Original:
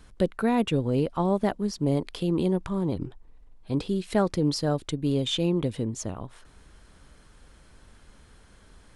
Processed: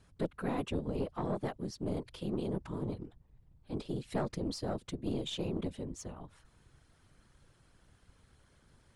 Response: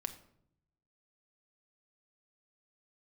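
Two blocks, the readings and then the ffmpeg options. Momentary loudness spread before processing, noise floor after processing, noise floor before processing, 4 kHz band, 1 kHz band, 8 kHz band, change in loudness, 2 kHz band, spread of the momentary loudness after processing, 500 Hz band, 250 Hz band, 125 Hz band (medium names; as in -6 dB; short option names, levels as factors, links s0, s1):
7 LU, -67 dBFS, -55 dBFS, -11.5 dB, -10.5 dB, -11.0 dB, -11.0 dB, -10.5 dB, 8 LU, -10.5 dB, -11.5 dB, -11.0 dB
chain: -af "afftfilt=real='hypot(re,im)*cos(2*PI*random(0))':imag='hypot(re,im)*sin(2*PI*random(1))':win_size=512:overlap=0.75,aeval=exprs='(tanh(11.2*val(0)+0.5)-tanh(0.5))/11.2':c=same,volume=0.75"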